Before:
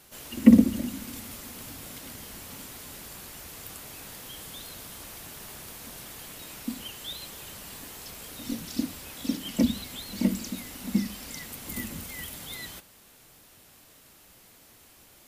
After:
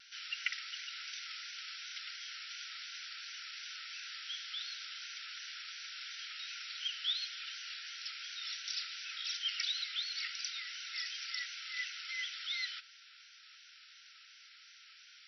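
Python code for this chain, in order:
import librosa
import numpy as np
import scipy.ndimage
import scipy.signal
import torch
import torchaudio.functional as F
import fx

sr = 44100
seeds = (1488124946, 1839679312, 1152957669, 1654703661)

y = fx.brickwall_bandpass(x, sr, low_hz=1300.0, high_hz=5900.0)
y = fx.peak_eq(y, sr, hz=1700.0, db=-4.0, octaves=0.3)
y = fx.vibrato(y, sr, rate_hz=2.8, depth_cents=55.0)
y = F.gain(torch.from_numpy(y), 4.0).numpy()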